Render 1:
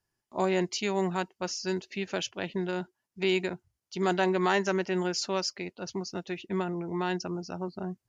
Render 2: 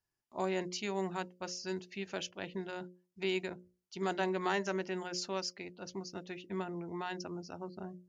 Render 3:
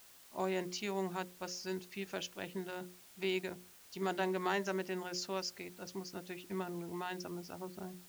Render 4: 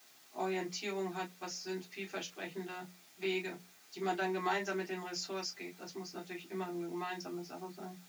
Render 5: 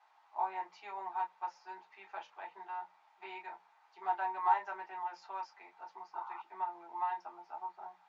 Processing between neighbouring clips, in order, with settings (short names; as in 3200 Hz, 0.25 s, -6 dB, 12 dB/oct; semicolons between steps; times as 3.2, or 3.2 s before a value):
notches 60/120/180/240/300/360/420/480/540/600 Hz; gain -7 dB
added noise white -58 dBFS; gain -1.5 dB
reverb, pre-delay 3 ms, DRR -3 dB; gain -5 dB
painted sound noise, 6.13–6.42, 750–1500 Hz -52 dBFS; ladder band-pass 950 Hz, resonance 80%; gain +9 dB